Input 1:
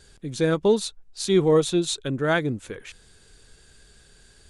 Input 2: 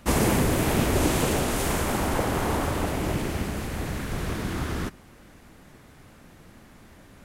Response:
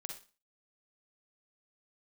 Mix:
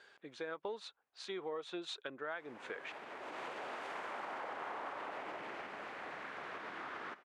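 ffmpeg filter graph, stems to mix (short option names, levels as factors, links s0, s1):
-filter_complex "[0:a]tremolo=f=1.1:d=0.63,volume=1.33,asplit=2[s0][s1];[1:a]alimiter=limit=0.106:level=0:latency=1:release=101,adelay=2250,volume=0.473,asplit=2[s2][s3];[s3]volume=0.335[s4];[s1]apad=whole_len=418586[s5];[s2][s5]sidechaincompress=threshold=0.00562:ratio=4:attack=16:release=633[s6];[2:a]atrim=start_sample=2205[s7];[s4][s7]afir=irnorm=-1:irlink=0[s8];[s0][s6][s8]amix=inputs=3:normalize=0,highpass=750,lowpass=2100,acompressor=threshold=0.0112:ratio=8"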